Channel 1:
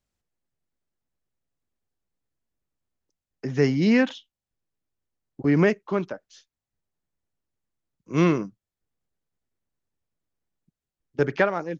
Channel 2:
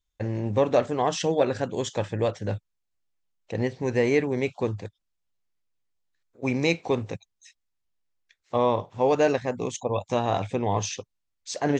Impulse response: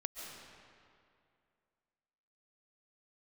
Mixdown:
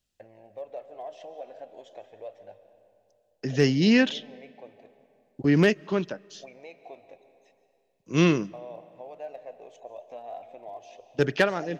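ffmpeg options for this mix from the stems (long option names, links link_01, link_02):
-filter_complex "[0:a]highshelf=frequency=2200:gain=-6.5,asoftclip=type=hard:threshold=-10.5dB,equalizer=frequency=2200:width_type=o:width=0.3:gain=-11.5,volume=-0.5dB,asplit=2[link_01][link_02];[link_02]volume=-23.5dB[link_03];[1:a]acompressor=threshold=-37dB:ratio=2.5,bandpass=frequency=660:width_type=q:width=5.8:csg=0,aphaser=in_gain=1:out_gain=1:delay=4.2:decay=0.34:speed=0.34:type=triangular,volume=-1dB,asplit=2[link_04][link_05];[link_05]volume=-3dB[link_06];[2:a]atrim=start_sample=2205[link_07];[link_03][link_06]amix=inputs=2:normalize=0[link_08];[link_08][link_07]afir=irnorm=-1:irlink=0[link_09];[link_01][link_04][link_09]amix=inputs=3:normalize=0,highshelf=frequency=1700:width_type=q:width=1.5:gain=10.5"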